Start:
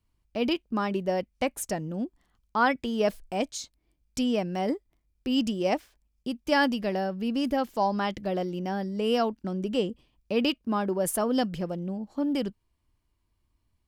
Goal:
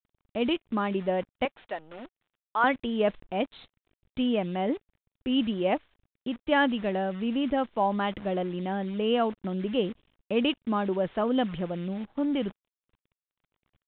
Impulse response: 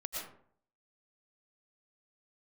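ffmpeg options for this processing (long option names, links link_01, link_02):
-filter_complex "[0:a]asettb=1/sr,asplit=3[link_01][link_02][link_03];[link_01]atrim=end=1.454[link_04];[link_02]atrim=start=1.45:end=2.64,asetpts=PTS-STARTPTS,afade=type=in:duration=0.004:curve=qsin,afade=type=out:start_time=1.186:duration=0.004:curve=qsin,highpass=580[link_05];[link_03]atrim=start=2.636[link_06];[link_04][link_05]acrossfade=duration=0.004:curve1=hsin:curve2=qsin[link_07];[link_07][link_06]acrossfade=duration=0.004:curve1=qsin:curve2=hsin,acrusher=bits=8:dc=4:mix=0:aa=0.000001,aresample=8000,aresample=44100"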